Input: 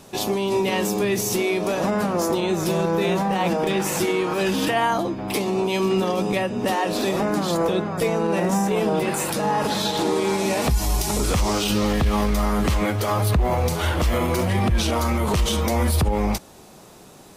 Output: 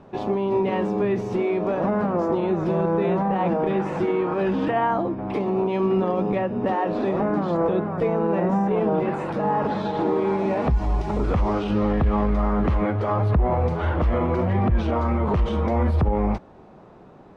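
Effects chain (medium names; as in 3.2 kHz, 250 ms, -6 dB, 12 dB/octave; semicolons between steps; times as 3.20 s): low-pass 1.4 kHz 12 dB/octave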